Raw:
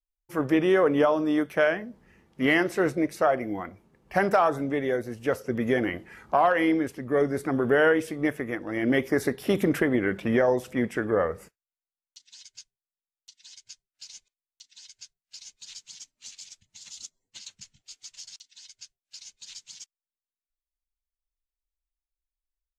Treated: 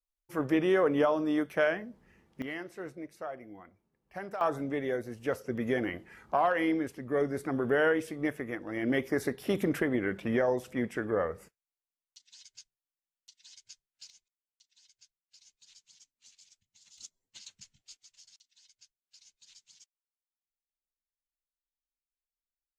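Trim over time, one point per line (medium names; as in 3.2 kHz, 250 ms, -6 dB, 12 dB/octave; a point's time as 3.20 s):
-4.5 dB
from 2.42 s -17 dB
from 4.41 s -5.5 dB
from 14.10 s -15 dB
from 16.98 s -6 dB
from 17.97 s -14 dB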